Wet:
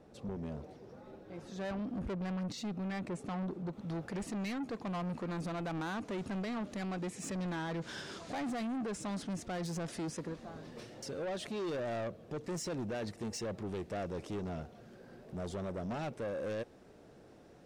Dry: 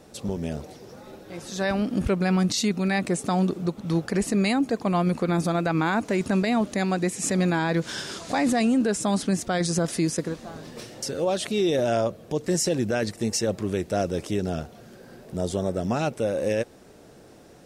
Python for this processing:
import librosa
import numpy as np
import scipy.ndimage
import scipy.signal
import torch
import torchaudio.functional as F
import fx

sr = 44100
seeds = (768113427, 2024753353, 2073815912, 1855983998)

y = fx.lowpass(x, sr, hz=fx.steps((0.0, 1400.0), (3.73, 3100.0)), slope=6)
y = 10.0 ** (-27.0 / 20.0) * np.tanh(y / 10.0 ** (-27.0 / 20.0))
y = y * librosa.db_to_amplitude(-7.5)